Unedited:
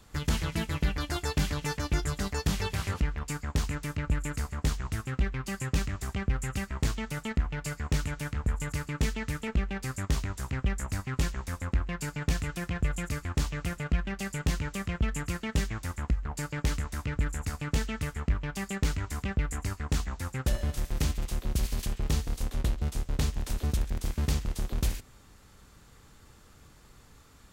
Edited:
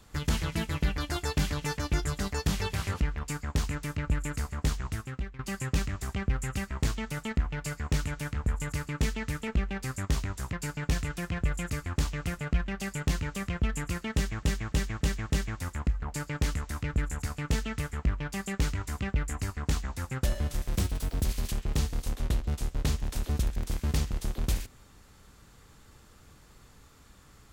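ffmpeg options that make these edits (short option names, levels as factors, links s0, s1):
-filter_complex "[0:a]asplit=9[s0][s1][s2][s3][s4][s5][s6][s7][s8];[s0]atrim=end=5.39,asetpts=PTS-STARTPTS,afade=t=out:st=4.85:d=0.54:silence=0.16788[s9];[s1]atrim=start=5.39:end=10.532,asetpts=PTS-STARTPTS,afade=t=in:d=0.004:c=hsin:silence=0.16788[s10];[s2]atrim=start=11.918:end=15.822[s11];[s3]atrim=start=15.528:end=15.822[s12];[s4]atrim=start=15.528:end=15.822[s13];[s5]atrim=start=15.528:end=15.822[s14];[s6]atrim=start=15.528:end=21.014[s15];[s7]atrim=start=21.01:end=21.59,asetpts=PTS-STARTPTS,asetrate=54684,aresample=44100,atrim=end_sample=20627,asetpts=PTS-STARTPTS[s16];[s8]atrim=start=21.586[s17];[s9][s10]concat=n=2:v=0:a=1[s18];[s18][s11]acrossfade=d=0.004:c1=hsin:c2=hsin[s19];[s19][s12]acrossfade=d=0.004:c1=hsin:c2=hsin[s20];[s20][s13]acrossfade=d=0.004:c1=hsin:c2=hsin[s21];[s21][s14]acrossfade=d=0.004:c1=hsin:c2=hsin[s22];[s22][s15]acrossfade=d=0.004:c1=hsin:c2=hsin[s23];[s23][s16]acrossfade=d=0.004:c1=hsin:c2=hsin[s24];[s24][s17]acrossfade=d=0.004:c1=hsin:c2=hsin"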